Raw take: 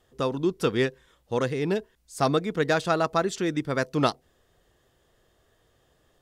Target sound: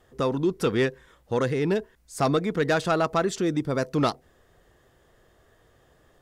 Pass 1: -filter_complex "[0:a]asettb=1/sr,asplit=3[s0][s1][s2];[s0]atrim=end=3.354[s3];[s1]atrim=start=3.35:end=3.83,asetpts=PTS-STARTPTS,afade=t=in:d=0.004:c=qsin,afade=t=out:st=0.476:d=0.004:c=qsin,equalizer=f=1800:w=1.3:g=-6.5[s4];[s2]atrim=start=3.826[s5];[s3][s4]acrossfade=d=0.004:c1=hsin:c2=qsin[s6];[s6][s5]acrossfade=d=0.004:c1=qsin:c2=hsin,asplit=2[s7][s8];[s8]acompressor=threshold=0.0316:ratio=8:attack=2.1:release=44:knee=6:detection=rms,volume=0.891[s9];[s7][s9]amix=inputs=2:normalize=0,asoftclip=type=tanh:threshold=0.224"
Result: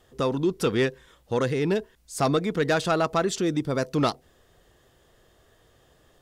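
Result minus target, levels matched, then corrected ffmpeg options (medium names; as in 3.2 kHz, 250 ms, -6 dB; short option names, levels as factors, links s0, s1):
8 kHz band +3.0 dB
-filter_complex "[0:a]asettb=1/sr,asplit=3[s0][s1][s2];[s0]atrim=end=3.354[s3];[s1]atrim=start=3.35:end=3.83,asetpts=PTS-STARTPTS,afade=t=in:d=0.004:c=qsin,afade=t=out:st=0.476:d=0.004:c=qsin,equalizer=f=1800:w=1.3:g=-6.5[s4];[s2]atrim=start=3.826[s5];[s3][s4]acrossfade=d=0.004:c1=hsin:c2=qsin[s6];[s6][s5]acrossfade=d=0.004:c1=qsin:c2=hsin,asplit=2[s7][s8];[s8]acompressor=threshold=0.0316:ratio=8:attack=2.1:release=44:knee=6:detection=rms,highshelf=f=3000:t=q:w=1.5:g=-10.5,volume=0.891[s9];[s7][s9]amix=inputs=2:normalize=0,asoftclip=type=tanh:threshold=0.224"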